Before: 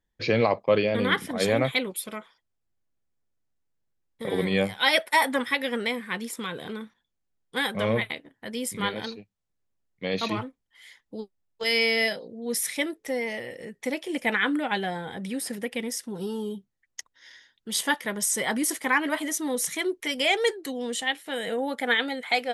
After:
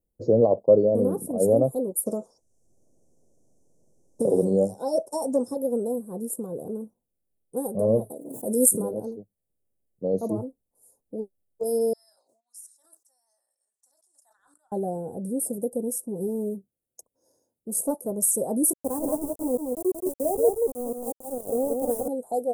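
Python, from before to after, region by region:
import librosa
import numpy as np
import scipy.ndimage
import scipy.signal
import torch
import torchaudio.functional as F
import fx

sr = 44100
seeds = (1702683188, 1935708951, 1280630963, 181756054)

y = fx.chain(x, sr, fx.lowpass_res(hz=5900.0, q=5.3),
    fx.band_squash(depth_pct=70), at=(2.06, 5.57))
y = fx.chain(y, sr, fx.highpass(hz=190.0, slope=12),
    fx.high_shelf_res(hz=5100.0, db=8.5, q=1.5),
    fx.pre_swell(db_per_s=52.0), at=(8.1, 8.91))
y = fx.chain(y, sr, fx.cheby2_highpass(hz=510.0, order=4, stop_db=60),
    fx.air_absorb(metres=150.0),
    fx.sustainer(db_per_s=130.0), at=(11.93, 14.72))
y = fx.chain(y, sr, fx.highpass(hz=85.0, slope=6),
    fx.doppler_dist(depth_ms=0.2), at=(16.28, 18.11))
y = fx.chain(y, sr, fx.lowpass(hz=2000.0, slope=12),
    fx.sample_gate(floor_db=-27.5),
    fx.echo_single(ms=177, db=-4.0), at=(18.73, 22.08))
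y = scipy.signal.sosfilt(scipy.signal.ellip(3, 1.0, 80, [590.0, 9200.0], 'bandstop', fs=sr, output='sos'), y)
y = fx.low_shelf(y, sr, hz=260.0, db=-7.0)
y = F.gain(torch.from_numpy(y), 7.0).numpy()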